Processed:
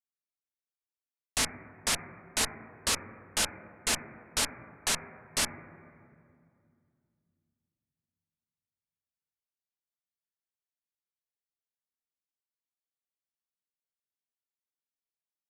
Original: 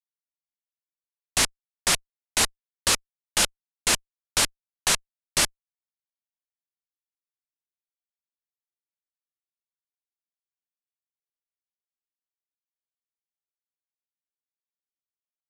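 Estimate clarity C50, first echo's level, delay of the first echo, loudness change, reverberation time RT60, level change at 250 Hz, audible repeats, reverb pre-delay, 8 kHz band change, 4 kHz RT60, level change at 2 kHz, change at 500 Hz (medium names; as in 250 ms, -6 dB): 11.0 dB, no echo, no echo, -7.0 dB, 2.4 s, -4.0 dB, no echo, 3 ms, -7.0 dB, 1.9 s, -6.5 dB, -6.0 dB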